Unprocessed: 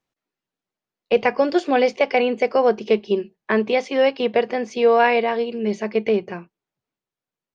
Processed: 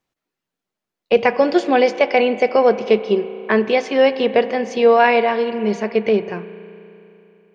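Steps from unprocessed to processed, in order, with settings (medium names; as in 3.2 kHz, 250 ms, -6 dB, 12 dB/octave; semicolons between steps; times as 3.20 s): spring tank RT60 3.1 s, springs 34 ms, chirp 65 ms, DRR 13 dB; trim +3 dB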